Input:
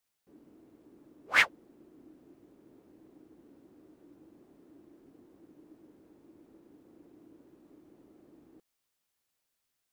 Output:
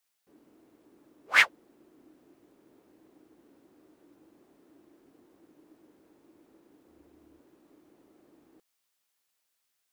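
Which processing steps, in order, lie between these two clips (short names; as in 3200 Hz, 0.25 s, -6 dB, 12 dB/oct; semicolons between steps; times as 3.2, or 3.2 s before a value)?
6.88–7.4 octaver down 2 oct, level -5 dB; low shelf 430 Hz -10 dB; gain +3.5 dB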